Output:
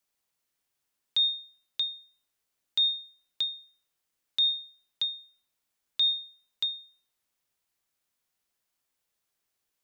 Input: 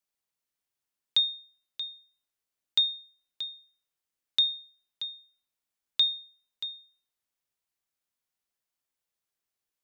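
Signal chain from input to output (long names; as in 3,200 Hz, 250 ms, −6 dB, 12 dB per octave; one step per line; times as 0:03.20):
brickwall limiter −25.5 dBFS, peak gain reduction 11 dB
level +6 dB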